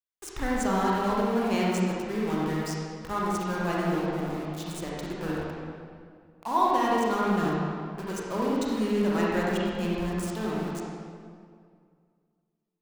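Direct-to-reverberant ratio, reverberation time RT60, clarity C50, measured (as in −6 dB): −5.5 dB, 2.1 s, −4.0 dB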